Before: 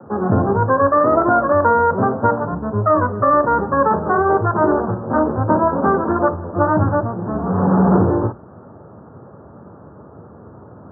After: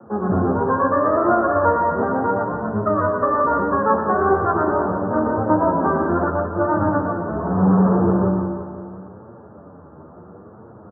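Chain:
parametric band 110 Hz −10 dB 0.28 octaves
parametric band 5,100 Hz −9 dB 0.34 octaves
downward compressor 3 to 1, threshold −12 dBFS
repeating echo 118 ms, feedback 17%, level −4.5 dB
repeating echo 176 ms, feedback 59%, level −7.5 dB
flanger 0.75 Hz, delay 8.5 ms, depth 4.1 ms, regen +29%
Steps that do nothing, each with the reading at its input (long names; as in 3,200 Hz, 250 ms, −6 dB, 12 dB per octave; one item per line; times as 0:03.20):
parametric band 5,100 Hz: nothing at its input above 1,800 Hz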